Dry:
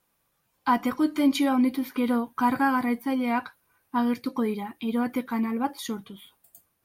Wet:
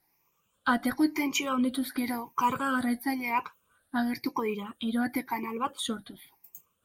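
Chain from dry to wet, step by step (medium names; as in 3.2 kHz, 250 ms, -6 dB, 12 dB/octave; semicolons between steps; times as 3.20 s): drifting ripple filter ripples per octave 0.76, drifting +0.96 Hz, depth 16 dB; 1.70–3.30 s: dynamic bell 8.1 kHz, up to +5 dB, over -48 dBFS, Q 0.71; harmonic-percussive split harmonic -8 dB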